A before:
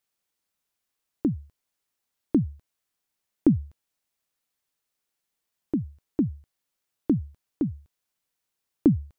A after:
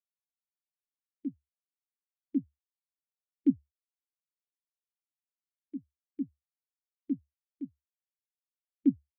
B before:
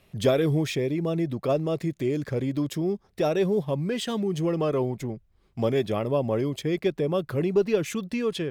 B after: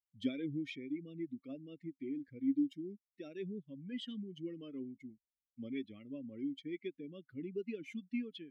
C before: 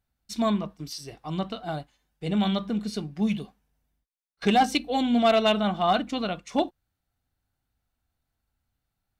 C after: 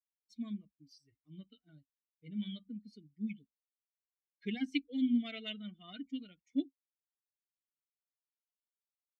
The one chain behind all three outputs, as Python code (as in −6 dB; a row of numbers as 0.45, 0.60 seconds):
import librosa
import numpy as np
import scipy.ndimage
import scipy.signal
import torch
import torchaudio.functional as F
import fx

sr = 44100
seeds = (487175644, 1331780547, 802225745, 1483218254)

y = fx.bin_expand(x, sr, power=2.0)
y = fx.vowel_filter(y, sr, vowel='i')
y = y * librosa.db_to_amplitude(1.0)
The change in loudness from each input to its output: −7.5, −16.0, −13.0 LU